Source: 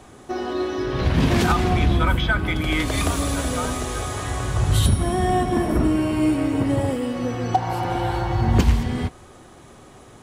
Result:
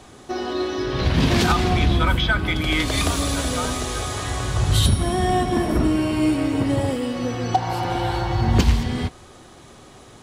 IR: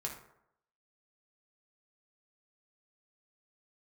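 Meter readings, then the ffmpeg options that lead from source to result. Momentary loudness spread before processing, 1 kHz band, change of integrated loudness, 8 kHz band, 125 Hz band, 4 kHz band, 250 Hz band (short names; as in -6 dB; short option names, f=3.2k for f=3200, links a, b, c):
8 LU, +0.5 dB, +0.5 dB, +2.0 dB, 0.0 dB, +5.0 dB, 0.0 dB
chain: -af "equalizer=f=4.3k:t=o:w=1.3:g=6"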